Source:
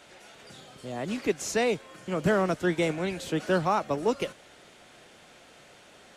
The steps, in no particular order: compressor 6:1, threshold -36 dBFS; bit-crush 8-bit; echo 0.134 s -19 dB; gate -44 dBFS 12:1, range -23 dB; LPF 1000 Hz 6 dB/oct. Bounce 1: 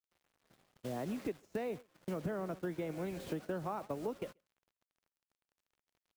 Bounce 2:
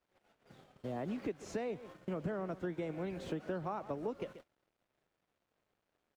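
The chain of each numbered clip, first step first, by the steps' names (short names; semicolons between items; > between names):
LPF > bit-crush > echo > compressor > gate; bit-crush > echo > gate > LPF > compressor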